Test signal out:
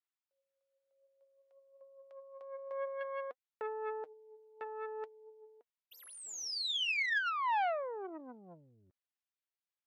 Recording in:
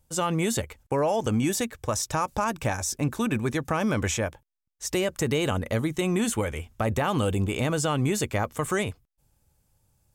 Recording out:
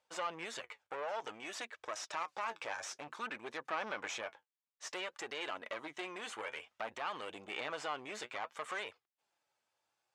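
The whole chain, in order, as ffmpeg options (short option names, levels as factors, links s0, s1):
-af "acompressor=threshold=0.0447:ratio=6,flanger=delay=1.5:depth=9.1:regen=56:speed=0.56:shape=triangular,aeval=exprs='(tanh(44.7*val(0)+0.55)-tanh(0.55))/44.7':c=same,aphaser=in_gain=1:out_gain=1:delay=3.1:decay=0.25:speed=0.26:type=sinusoidal,highpass=780,lowpass=3800,volume=1.68"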